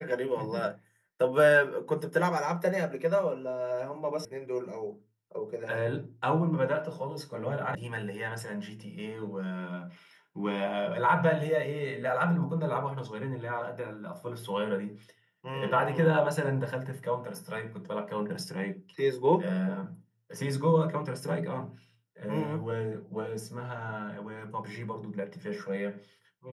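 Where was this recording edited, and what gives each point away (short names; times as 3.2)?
4.25 sound cut off
7.75 sound cut off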